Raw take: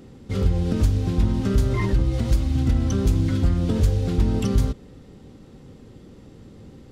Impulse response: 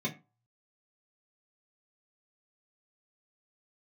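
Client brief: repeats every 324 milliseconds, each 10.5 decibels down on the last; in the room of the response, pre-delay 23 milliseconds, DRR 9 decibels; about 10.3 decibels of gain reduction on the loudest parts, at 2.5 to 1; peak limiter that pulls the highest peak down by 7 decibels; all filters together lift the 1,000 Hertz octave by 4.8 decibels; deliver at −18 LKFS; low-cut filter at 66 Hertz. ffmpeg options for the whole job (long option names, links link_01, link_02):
-filter_complex "[0:a]highpass=66,equalizer=frequency=1000:width_type=o:gain=6,acompressor=threshold=-33dB:ratio=2.5,alimiter=level_in=1.5dB:limit=-24dB:level=0:latency=1,volume=-1.5dB,aecho=1:1:324|648|972:0.299|0.0896|0.0269,asplit=2[link_01][link_02];[1:a]atrim=start_sample=2205,adelay=23[link_03];[link_02][link_03]afir=irnorm=-1:irlink=0,volume=-14dB[link_04];[link_01][link_04]amix=inputs=2:normalize=0,volume=16.5dB"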